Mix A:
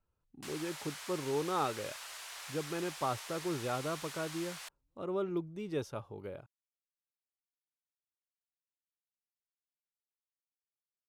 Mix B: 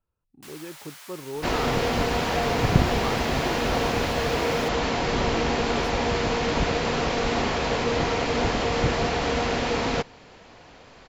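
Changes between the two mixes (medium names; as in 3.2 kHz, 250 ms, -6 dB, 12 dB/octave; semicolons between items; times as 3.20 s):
second sound: unmuted; master: remove low-pass 11 kHz 12 dB/octave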